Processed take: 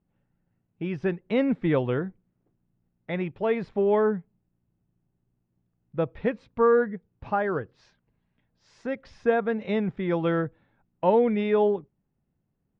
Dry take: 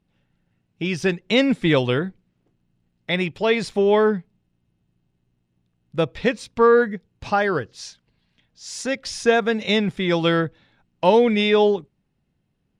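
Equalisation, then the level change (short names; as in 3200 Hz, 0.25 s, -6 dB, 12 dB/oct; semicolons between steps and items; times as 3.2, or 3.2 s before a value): LPF 1500 Hz 12 dB/oct; -5.0 dB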